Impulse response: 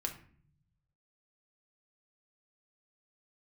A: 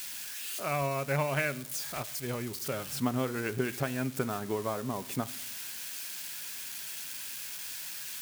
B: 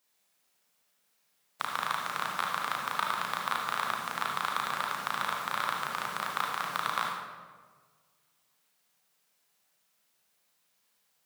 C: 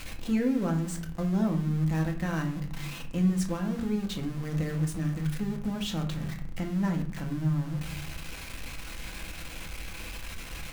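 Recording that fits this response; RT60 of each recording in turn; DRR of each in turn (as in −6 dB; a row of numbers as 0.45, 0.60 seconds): C; 0.85, 1.5, 0.50 seconds; 14.0, −3.5, 2.0 decibels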